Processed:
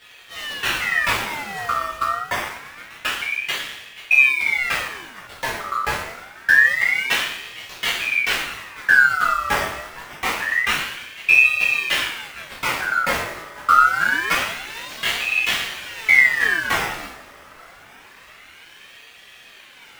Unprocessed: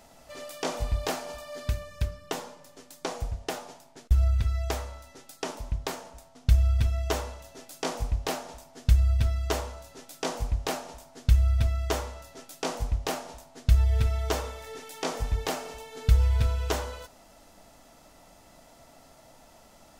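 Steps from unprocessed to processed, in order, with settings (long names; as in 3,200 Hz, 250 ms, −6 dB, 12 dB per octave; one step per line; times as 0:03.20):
sample-and-hold swept by an LFO 11×, swing 100% 1.8 Hz
coupled-rooms reverb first 0.57 s, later 2.2 s, from −19 dB, DRR −8.5 dB
ring modulator whose carrier an LFO sweeps 1,900 Hz, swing 35%, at 0.26 Hz
level +3 dB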